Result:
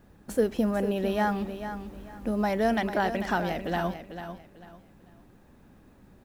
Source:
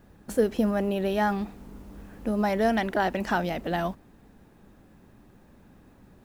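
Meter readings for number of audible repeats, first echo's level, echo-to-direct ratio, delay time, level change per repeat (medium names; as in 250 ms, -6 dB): 3, -10.0 dB, -9.5 dB, 444 ms, -11.5 dB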